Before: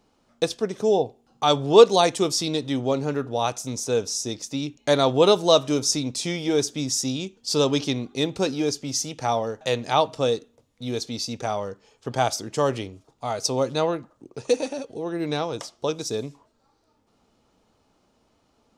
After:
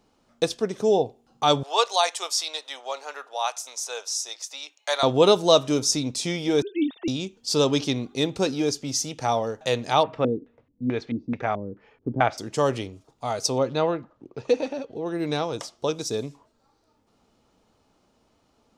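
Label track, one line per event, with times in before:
1.630000	5.030000	high-pass 700 Hz 24 dB/octave
6.620000	7.080000	formants replaced by sine waves
10.030000	12.380000	LFO low-pass square 2.3 Hz 290–2000 Hz
13.580000	15.060000	low-pass 3.6 kHz

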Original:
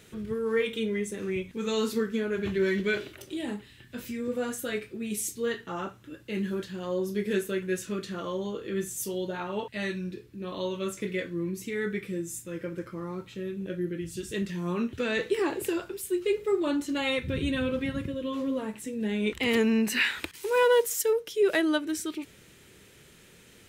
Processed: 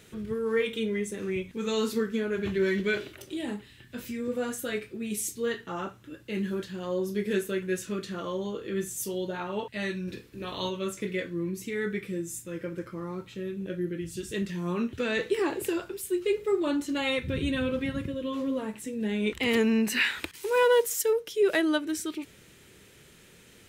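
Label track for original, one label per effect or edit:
10.070000	10.690000	spectral peaks clipped ceiling under each frame's peak by 14 dB

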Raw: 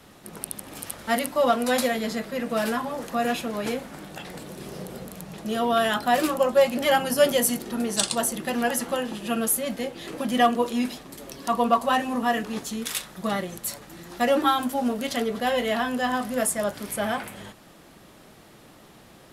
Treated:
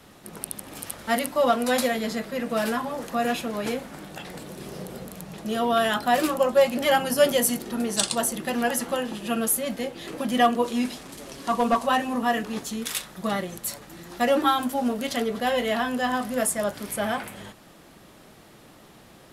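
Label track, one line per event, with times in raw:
10.640000	11.870000	one-bit delta coder 64 kbps, step -37.5 dBFS

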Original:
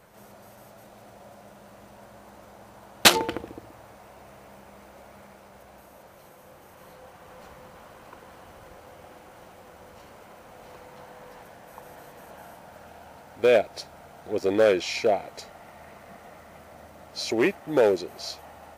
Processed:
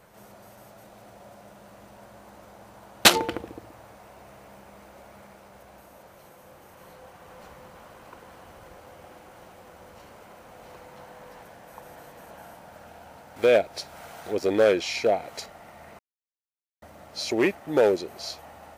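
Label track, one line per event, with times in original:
13.360000	15.460000	tape noise reduction on one side only encoder only
15.990000	16.820000	mute

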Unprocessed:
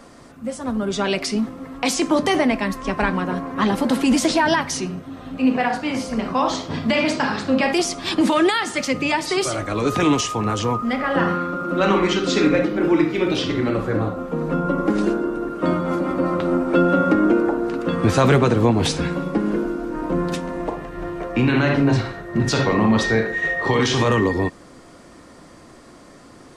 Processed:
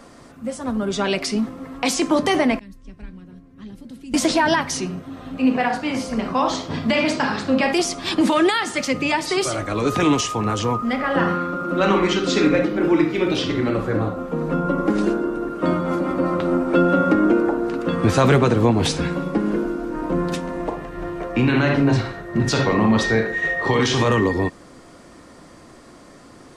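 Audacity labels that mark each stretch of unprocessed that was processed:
2.590000	4.140000	amplifier tone stack bass-middle-treble 10-0-1

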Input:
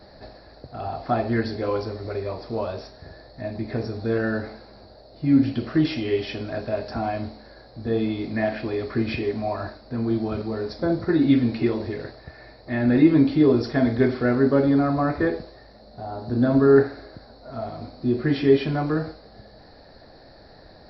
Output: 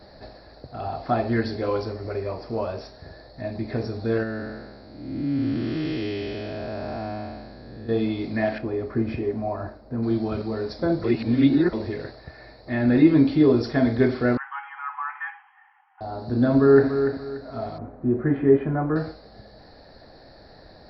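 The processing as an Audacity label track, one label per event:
1.920000	2.810000	peaking EQ 3.7 kHz -8.5 dB 0.31 oct
4.230000	7.890000	spectral blur width 431 ms
8.580000	10.030000	peaking EQ 3.9 kHz -14.5 dB 2 oct
11.040000	11.730000	reverse
14.370000	16.010000	brick-wall FIR band-pass 760–3300 Hz
16.540000	17.080000	echo throw 290 ms, feedback 30%, level -8 dB
17.780000	18.960000	low-pass 1.7 kHz 24 dB/octave

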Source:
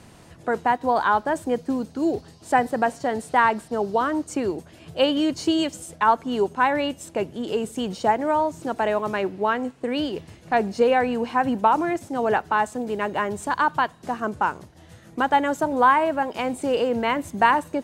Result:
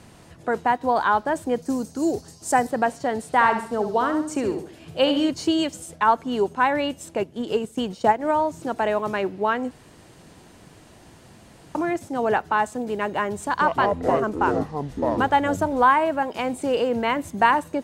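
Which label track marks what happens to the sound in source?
1.620000	2.670000	resonant high shelf 4.7 kHz +9.5 dB, Q 1.5
3.260000	5.290000	flutter echo walls apart 11.7 m, dies away in 0.48 s
7.190000	8.310000	transient shaper attack +3 dB, sustain -7 dB
9.710000	11.750000	room tone
13.450000	15.840000	ever faster or slower copies 135 ms, each echo -7 st, echoes 3

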